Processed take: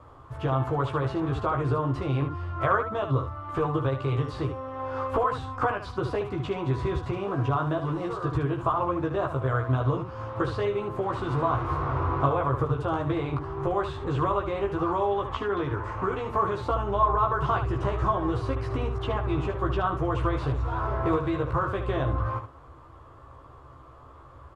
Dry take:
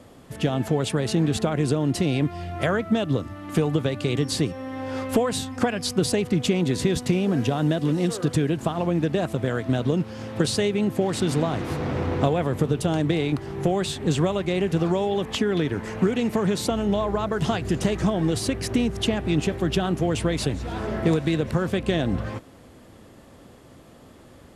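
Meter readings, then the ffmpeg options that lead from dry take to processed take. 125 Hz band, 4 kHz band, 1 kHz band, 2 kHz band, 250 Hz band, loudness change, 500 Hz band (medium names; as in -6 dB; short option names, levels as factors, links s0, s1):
-2.5 dB, -13.5 dB, +5.0 dB, -3.0 dB, -8.5 dB, -3.5 dB, -3.5 dB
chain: -filter_complex "[0:a]acrossover=split=3900[s0][s1];[s1]acompressor=threshold=0.00891:ratio=4:attack=1:release=60[s2];[s0][s2]amix=inputs=2:normalize=0,firequalizer=gain_entry='entry(110,0);entry(200,-25);entry(300,-10);entry(770,-6);entry(1100,7);entry(1800,-12);entry(4700,-19);entry(13000,-28)':delay=0.05:min_phase=1,aecho=1:1:15|74:0.708|0.422,volume=1.33"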